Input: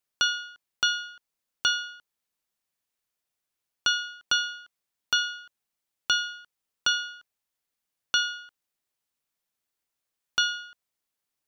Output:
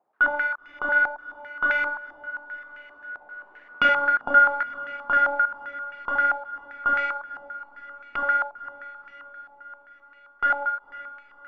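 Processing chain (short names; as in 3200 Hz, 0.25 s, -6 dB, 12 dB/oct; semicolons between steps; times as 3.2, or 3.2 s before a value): half-waves squared off; Doppler pass-by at 3.56, 5 m/s, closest 2.3 m; HPF 230 Hz 12 dB/oct; low shelf 420 Hz +8.5 dB; overdrive pedal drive 33 dB, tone 1000 Hz, clips at -24.5 dBFS; phaser 1.6 Hz, delay 3.8 ms, feedback 30%; diffused feedback echo 0.509 s, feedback 63%, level -15.5 dB; stepped low-pass 7.6 Hz 810–2200 Hz; gain +6.5 dB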